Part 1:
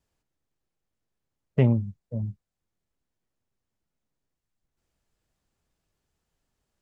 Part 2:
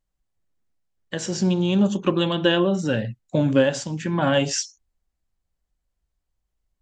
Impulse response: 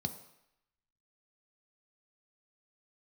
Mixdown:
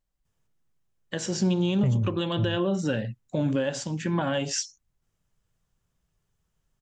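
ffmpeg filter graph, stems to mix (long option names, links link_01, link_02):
-filter_complex "[0:a]adelay=250,volume=0.5dB,asplit=2[link_01][link_02];[link_02]volume=-11.5dB[link_03];[1:a]volume=-2dB[link_04];[2:a]atrim=start_sample=2205[link_05];[link_03][link_05]afir=irnorm=-1:irlink=0[link_06];[link_01][link_04][link_06]amix=inputs=3:normalize=0,alimiter=limit=-16.5dB:level=0:latency=1:release=241"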